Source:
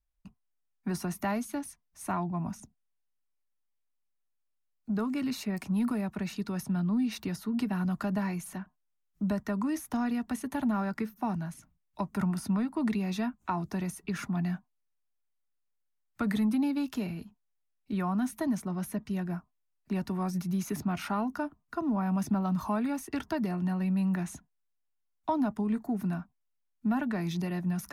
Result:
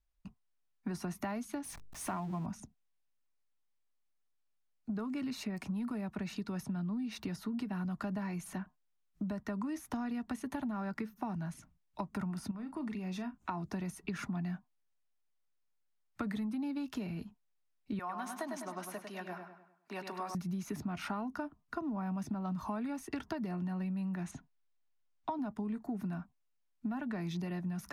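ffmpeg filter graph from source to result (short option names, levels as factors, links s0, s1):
-filter_complex "[0:a]asettb=1/sr,asplit=3[s0][s1][s2];[s0]atrim=end=1.644[s3];[s1]atrim=start=1.64:end=2.46,asetpts=PTS-STARTPTS,afade=t=in:d=0.004:c=qsin,afade=t=out:st=0.816:d=0.004:c=qsin,aeval=exprs='val(0)+0.5*0.00668*sgn(val(0))':c=same,highshelf=f=12000:g=4.5,bandreject=f=50:t=h:w=6,bandreject=f=100:t=h:w=6,bandreject=f=150:t=h:w=6,bandreject=f=200:t=h:w=6,bandreject=f=250:t=h:w=6,bandreject=f=300:t=h:w=6,bandreject=f=350:t=h:w=6,bandreject=f=400:t=h:w=6,bandreject=f=450:t=h:w=6[s4];[s2]atrim=start=2.456[s5];[s3][s4]acrossfade=d=0.004:c1=hsin:c2=qsin[s6];[s6][s5]acrossfade=d=0.004:c1=qsin:c2=hsin,asettb=1/sr,asplit=3[s7][s8][s9];[s7]atrim=end=12.514[s10];[s8]atrim=start=12.51:end=13.38,asetpts=PTS-STARTPTS,afade=t=in:d=0.004:c=qsin,afade=t=out:st=0.866:d=0.004:c=qsin,bandreject=f=4000:w=12,acompressor=threshold=0.01:ratio=2.5:attack=3.2:release=140:knee=1:detection=peak,asplit=2[s11][s12];[s12]adelay=38,volume=0.237[s13];[s11][s13]amix=inputs=2:normalize=0,atrim=end_sample=38367[s14];[s9]atrim=start=13.376[s15];[s10][s14]acrossfade=d=0.004:c1=hsin:c2=qsin[s16];[s16][s15]acrossfade=d=0.004:c1=qsin:c2=hsin,asettb=1/sr,asplit=3[s17][s18][s19];[s17]atrim=end=17.994[s20];[s18]atrim=start=17.99:end=20.35,asetpts=PTS-STARTPTS,afade=t=in:d=0.004:c=qsin,afade=t=out:st=2.356:d=0.004:c=qsin,highpass=570,asplit=2[s21][s22];[s22]adelay=101,lowpass=f=4900:p=1,volume=0.501,asplit=2[s23][s24];[s24]adelay=101,lowpass=f=4900:p=1,volume=0.45,asplit=2[s25][s26];[s26]adelay=101,lowpass=f=4900:p=1,volume=0.45,asplit=2[s27][s28];[s28]adelay=101,lowpass=f=4900:p=1,volume=0.45,asplit=2[s29][s30];[s30]adelay=101,lowpass=f=4900:p=1,volume=0.45[s31];[s21][s23][s25][s27][s29][s31]amix=inputs=6:normalize=0,atrim=end_sample=104076[s32];[s19]atrim=start=20.346[s33];[s20][s32]acrossfade=d=0.004:c1=hsin:c2=qsin[s34];[s34][s33]acrossfade=d=0.004:c1=qsin:c2=hsin,asettb=1/sr,asplit=3[s35][s36][s37];[s35]atrim=end=24.314[s38];[s36]atrim=start=24.31:end=25.39,asetpts=PTS-STARTPTS,afade=t=in:d=0.004:c=qsin,afade=t=out:st=1.076:d=0.004:c=qsin,lowpass=6800,acrossover=split=3900[s39][s40];[s40]acompressor=threshold=0.00158:ratio=4:attack=1:release=60[s41];[s39][s41]amix=inputs=2:normalize=0,aecho=1:1:7.5:0.39,atrim=end_sample=47628[s42];[s37]atrim=start=25.386[s43];[s38][s42]acrossfade=d=0.004:c1=hsin:c2=qsin[s44];[s44][s43]acrossfade=d=0.004:c1=qsin:c2=hsin,highshelf=f=10000:g=-10.5,acompressor=threshold=0.0158:ratio=6,volume=1.12"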